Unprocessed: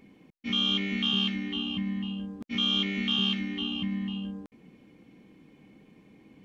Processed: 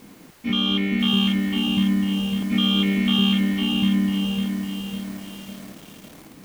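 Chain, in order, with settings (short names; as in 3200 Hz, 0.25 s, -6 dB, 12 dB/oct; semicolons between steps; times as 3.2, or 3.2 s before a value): added noise white -54 dBFS; high shelf 2700 Hz -11.5 dB; lo-fi delay 0.552 s, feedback 55%, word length 8-bit, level -5 dB; gain +9 dB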